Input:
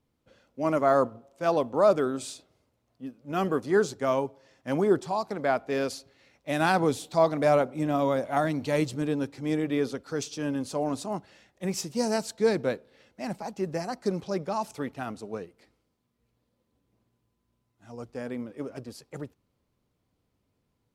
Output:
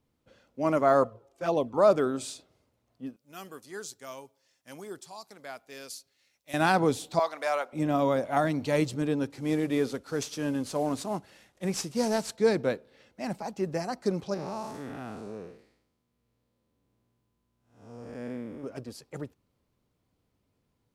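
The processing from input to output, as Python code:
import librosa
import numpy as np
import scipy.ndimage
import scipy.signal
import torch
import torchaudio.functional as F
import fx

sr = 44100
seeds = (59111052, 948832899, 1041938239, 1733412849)

y = fx.env_flanger(x, sr, rest_ms=2.9, full_db=-20.0, at=(1.03, 1.78))
y = fx.pre_emphasis(y, sr, coefficient=0.9, at=(3.16, 6.54))
y = fx.highpass(y, sr, hz=910.0, slope=12, at=(7.19, 7.73))
y = fx.cvsd(y, sr, bps=64000, at=(9.3, 12.36))
y = fx.spec_blur(y, sr, span_ms=221.0, at=(14.34, 18.64))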